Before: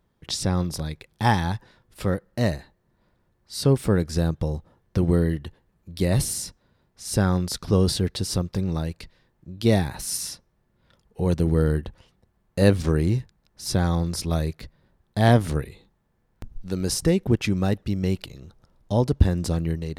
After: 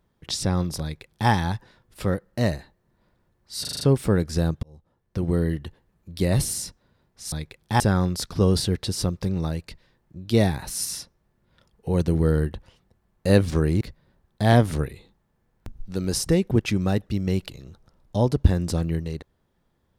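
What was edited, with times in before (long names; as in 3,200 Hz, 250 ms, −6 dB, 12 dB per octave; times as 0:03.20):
0:00.82–0:01.30: duplicate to 0:07.12
0:03.61: stutter 0.04 s, 6 plays
0:04.43–0:05.40: fade in
0:13.13–0:14.57: remove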